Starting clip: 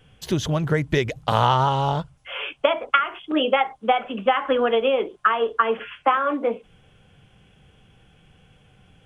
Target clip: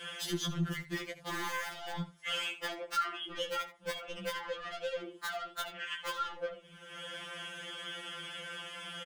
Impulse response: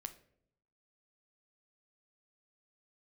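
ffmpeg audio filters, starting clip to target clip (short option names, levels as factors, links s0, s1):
-filter_complex "[0:a]acrossover=split=400[s0][s1];[s1]acompressor=mode=upward:threshold=0.0447:ratio=2.5[s2];[s0][s2]amix=inputs=2:normalize=0,aeval=exprs='(mod(2.99*val(0)+1,2)-1)/2.99':c=same,acompressor=threshold=0.0562:ratio=10,highpass=f=290:p=1,asoftclip=type=tanh:threshold=0.0266,adynamicequalizer=threshold=0.00562:dfrequency=650:dqfactor=0.89:tfrequency=650:tqfactor=0.89:attack=5:release=100:ratio=0.375:range=2:mode=cutabove:tftype=bell,asplit=2[s3][s4];[s4]aecho=0:1:11|79:0.422|0.178[s5];[s3][s5]amix=inputs=2:normalize=0,afftfilt=real='re*2.83*eq(mod(b,8),0)':imag='im*2.83*eq(mod(b,8),0)':win_size=2048:overlap=0.75,volume=1.19"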